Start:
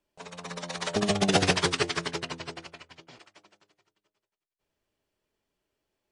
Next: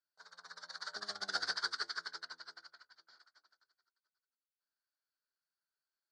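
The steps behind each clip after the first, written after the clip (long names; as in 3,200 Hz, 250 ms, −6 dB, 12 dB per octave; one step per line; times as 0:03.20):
pair of resonant band-passes 2,600 Hz, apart 1.6 octaves
level −2 dB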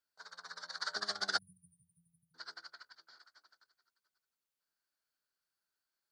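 in parallel at −1.5 dB: output level in coarse steps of 15 dB
on the sum: time-frequency box erased 0:01.37–0:02.35, 210–9,100 Hz
level +1.5 dB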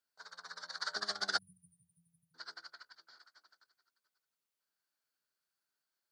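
high-pass filter 89 Hz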